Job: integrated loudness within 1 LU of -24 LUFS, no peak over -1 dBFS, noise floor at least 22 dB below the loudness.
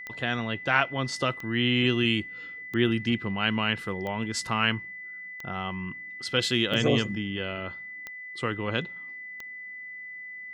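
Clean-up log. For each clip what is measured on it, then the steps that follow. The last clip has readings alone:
clicks found 8; steady tone 2 kHz; tone level -38 dBFS; loudness -27.5 LUFS; peak level -6.0 dBFS; loudness target -24.0 LUFS
-> de-click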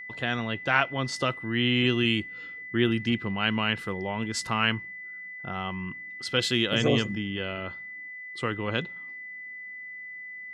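clicks found 0; steady tone 2 kHz; tone level -38 dBFS
-> band-stop 2 kHz, Q 30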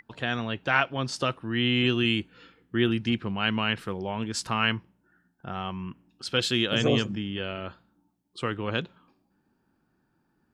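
steady tone not found; loudness -27.5 LUFS; peak level -6.5 dBFS; loudness target -24.0 LUFS
-> trim +3.5 dB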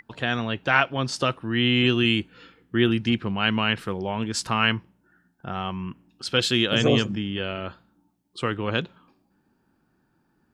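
loudness -24.0 LUFS; peak level -3.0 dBFS; noise floor -69 dBFS

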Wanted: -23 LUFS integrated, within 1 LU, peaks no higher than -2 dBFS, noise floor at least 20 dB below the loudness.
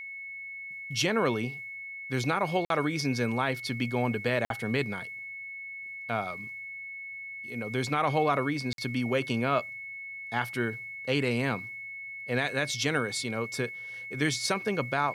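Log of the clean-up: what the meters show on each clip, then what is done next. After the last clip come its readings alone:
dropouts 3; longest dropout 52 ms; steady tone 2.2 kHz; tone level -38 dBFS; loudness -30.5 LUFS; peak level -13.5 dBFS; loudness target -23.0 LUFS
-> interpolate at 2.65/4.45/8.73 s, 52 ms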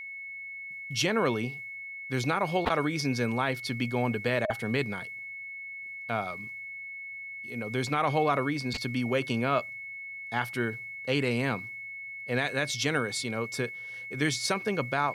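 dropouts 0; steady tone 2.2 kHz; tone level -38 dBFS
-> band-stop 2.2 kHz, Q 30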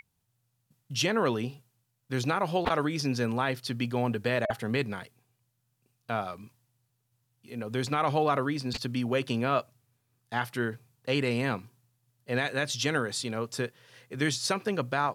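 steady tone not found; loudness -30.0 LUFS; peak level -13.5 dBFS; loudness target -23.0 LUFS
-> trim +7 dB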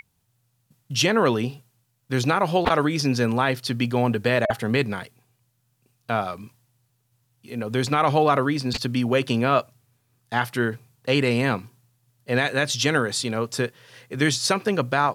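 loudness -23.0 LUFS; peak level -6.5 dBFS; noise floor -70 dBFS

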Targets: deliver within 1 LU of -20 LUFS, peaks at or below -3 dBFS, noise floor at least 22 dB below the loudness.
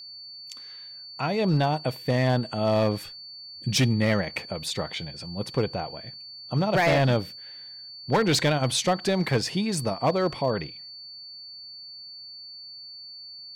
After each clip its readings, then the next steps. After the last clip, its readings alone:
clipped samples 0.8%; clipping level -16.0 dBFS; steady tone 4.5 kHz; tone level -40 dBFS; loudness -25.5 LUFS; peak level -16.0 dBFS; loudness target -20.0 LUFS
-> clip repair -16 dBFS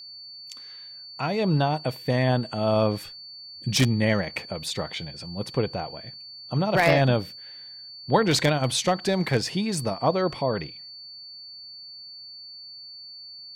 clipped samples 0.0%; steady tone 4.5 kHz; tone level -40 dBFS
-> band-stop 4.5 kHz, Q 30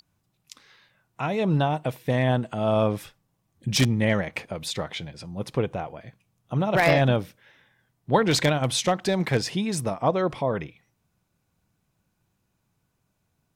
steady tone not found; loudness -25.0 LUFS; peak level -7.0 dBFS; loudness target -20.0 LUFS
-> trim +5 dB; peak limiter -3 dBFS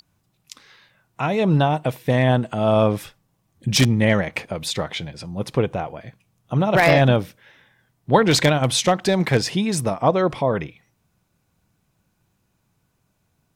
loudness -20.0 LUFS; peak level -3.0 dBFS; noise floor -69 dBFS

